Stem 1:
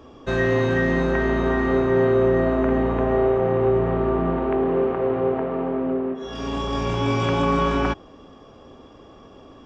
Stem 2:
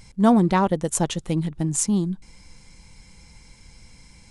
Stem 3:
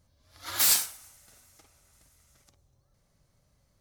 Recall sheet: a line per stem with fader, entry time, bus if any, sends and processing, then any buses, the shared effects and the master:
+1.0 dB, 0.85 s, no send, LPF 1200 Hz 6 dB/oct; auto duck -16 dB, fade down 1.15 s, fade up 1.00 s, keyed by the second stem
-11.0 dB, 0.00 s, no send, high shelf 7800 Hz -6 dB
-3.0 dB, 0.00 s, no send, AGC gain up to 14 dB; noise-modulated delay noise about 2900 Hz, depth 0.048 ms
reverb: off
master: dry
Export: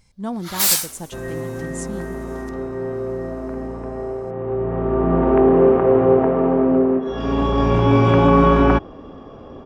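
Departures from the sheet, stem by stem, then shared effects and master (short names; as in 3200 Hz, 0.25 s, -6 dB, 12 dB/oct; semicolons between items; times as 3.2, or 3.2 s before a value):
stem 1 +1.0 dB -> +8.5 dB; stem 2: missing high shelf 7800 Hz -6 dB; stem 3: missing noise-modulated delay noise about 2900 Hz, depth 0.048 ms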